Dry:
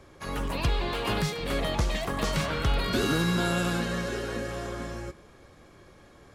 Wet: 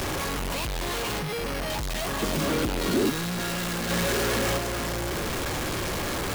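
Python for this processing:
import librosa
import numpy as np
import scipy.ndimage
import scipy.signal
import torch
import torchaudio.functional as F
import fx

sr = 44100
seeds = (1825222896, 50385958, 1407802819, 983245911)

y = np.sign(x) * np.sqrt(np.mean(np.square(x)))
y = fx.resample_bad(y, sr, factor=6, down='filtered', up='hold', at=(1.19, 1.7))
y = fx.peak_eq(y, sr, hz=310.0, db=12.5, octaves=1.3, at=(2.22, 3.1))
y = fx.env_flatten(y, sr, amount_pct=50, at=(3.89, 4.57), fade=0.02)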